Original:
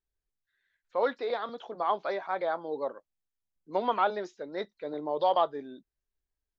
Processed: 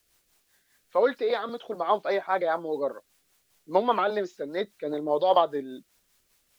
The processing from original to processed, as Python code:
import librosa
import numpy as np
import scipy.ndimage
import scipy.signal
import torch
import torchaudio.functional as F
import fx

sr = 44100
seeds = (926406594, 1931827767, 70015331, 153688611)

y = fx.quant_dither(x, sr, seeds[0], bits=12, dither='triangular')
y = fx.rotary(y, sr, hz=5.0)
y = F.gain(torch.from_numpy(y), 7.5).numpy()